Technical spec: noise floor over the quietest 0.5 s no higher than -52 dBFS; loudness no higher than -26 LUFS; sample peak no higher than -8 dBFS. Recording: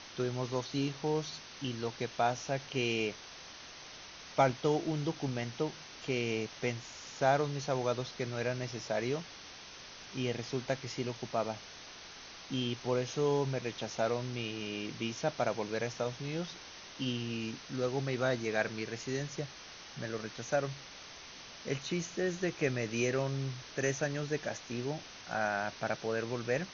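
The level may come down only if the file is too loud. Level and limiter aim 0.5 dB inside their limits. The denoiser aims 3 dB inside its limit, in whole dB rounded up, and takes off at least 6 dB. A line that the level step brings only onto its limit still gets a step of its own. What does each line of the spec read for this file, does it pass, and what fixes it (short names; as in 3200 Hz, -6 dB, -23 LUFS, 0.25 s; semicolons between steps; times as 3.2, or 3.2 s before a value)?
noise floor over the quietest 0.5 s -50 dBFS: fail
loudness -35.0 LUFS: OK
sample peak -14.0 dBFS: OK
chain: denoiser 6 dB, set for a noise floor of -50 dBFS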